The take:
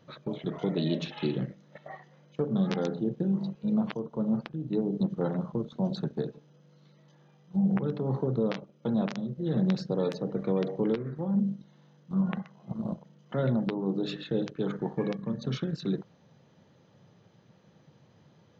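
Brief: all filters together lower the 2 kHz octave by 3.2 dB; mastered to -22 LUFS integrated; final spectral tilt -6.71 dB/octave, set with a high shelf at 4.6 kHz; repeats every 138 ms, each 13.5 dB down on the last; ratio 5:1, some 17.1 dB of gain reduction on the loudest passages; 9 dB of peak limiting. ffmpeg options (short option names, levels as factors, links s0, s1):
-af "equalizer=f=2000:t=o:g=-5.5,highshelf=f=4600:g=6,acompressor=threshold=0.00708:ratio=5,alimiter=level_in=5.01:limit=0.0631:level=0:latency=1,volume=0.2,aecho=1:1:138|276:0.211|0.0444,volume=20"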